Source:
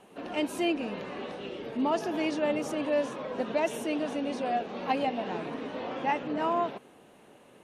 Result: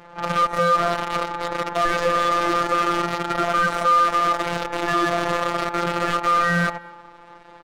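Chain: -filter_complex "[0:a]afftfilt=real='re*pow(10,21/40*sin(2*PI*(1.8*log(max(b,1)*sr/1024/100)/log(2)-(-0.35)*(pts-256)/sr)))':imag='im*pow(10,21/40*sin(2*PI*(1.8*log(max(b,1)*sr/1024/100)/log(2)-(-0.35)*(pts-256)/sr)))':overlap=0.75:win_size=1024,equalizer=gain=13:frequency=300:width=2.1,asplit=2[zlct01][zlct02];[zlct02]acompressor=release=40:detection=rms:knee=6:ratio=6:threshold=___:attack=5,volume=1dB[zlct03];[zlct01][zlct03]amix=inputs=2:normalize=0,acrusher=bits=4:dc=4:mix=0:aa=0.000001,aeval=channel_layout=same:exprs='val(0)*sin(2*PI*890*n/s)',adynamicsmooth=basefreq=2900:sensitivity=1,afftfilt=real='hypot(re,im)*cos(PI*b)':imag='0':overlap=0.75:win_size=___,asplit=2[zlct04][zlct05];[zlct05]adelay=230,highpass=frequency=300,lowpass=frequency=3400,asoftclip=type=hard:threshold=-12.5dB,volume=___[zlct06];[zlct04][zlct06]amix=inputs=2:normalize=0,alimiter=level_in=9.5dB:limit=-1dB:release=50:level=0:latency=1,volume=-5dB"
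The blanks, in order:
-24dB, 1024, -25dB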